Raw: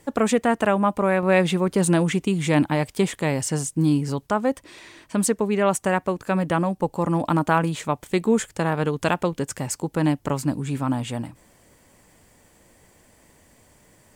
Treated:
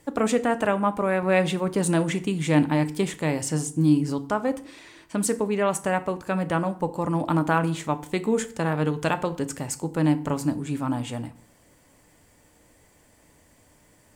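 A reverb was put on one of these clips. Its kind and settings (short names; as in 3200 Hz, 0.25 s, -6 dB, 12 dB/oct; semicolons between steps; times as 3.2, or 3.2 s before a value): FDN reverb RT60 0.51 s, low-frequency decay 1.2×, high-frequency decay 0.75×, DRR 9.5 dB; gain -3 dB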